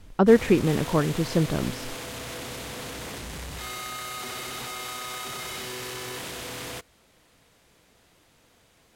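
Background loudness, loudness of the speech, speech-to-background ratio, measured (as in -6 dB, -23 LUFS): -34.5 LUFS, -22.5 LUFS, 12.0 dB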